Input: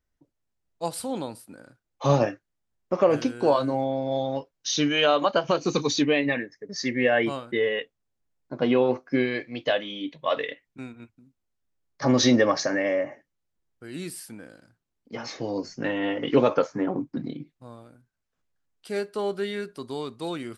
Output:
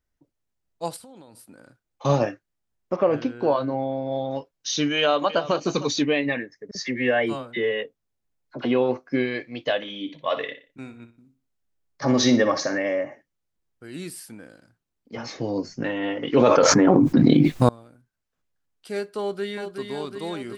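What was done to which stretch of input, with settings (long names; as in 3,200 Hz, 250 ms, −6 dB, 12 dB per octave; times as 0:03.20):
0:00.96–0:02.05: downward compressor 10 to 1, threshold −42 dBFS
0:02.96–0:04.31: high-frequency loss of the air 190 metres
0:04.98–0:05.54: delay throw 310 ms, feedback 10%, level −14.5 dB
0:06.71–0:08.65: all-pass dispersion lows, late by 43 ms, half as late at 1,000 Hz
0:09.76–0:12.78: repeating echo 60 ms, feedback 31%, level −11.5 dB
0:15.17–0:15.84: low-shelf EQ 320 Hz +6.5 dB
0:16.36–0:17.69: envelope flattener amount 100%
0:19.20–0:19.81: delay throw 370 ms, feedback 70%, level −6 dB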